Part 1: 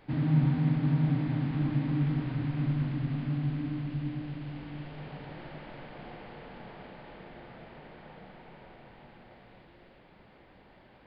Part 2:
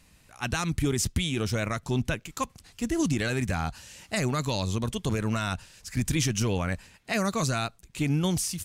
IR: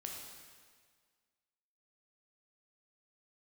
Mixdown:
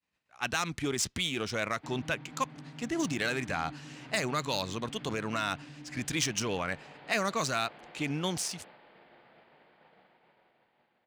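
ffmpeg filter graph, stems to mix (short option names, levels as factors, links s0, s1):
-filter_complex "[0:a]acompressor=threshold=0.0282:ratio=10,adelay=1750,volume=0.708[s0];[1:a]adynamicsmooth=sensitivity=4.5:basefreq=4200,volume=1.12[s1];[s0][s1]amix=inputs=2:normalize=0,agate=range=0.0224:threshold=0.00501:ratio=3:detection=peak,highpass=f=550:p=1"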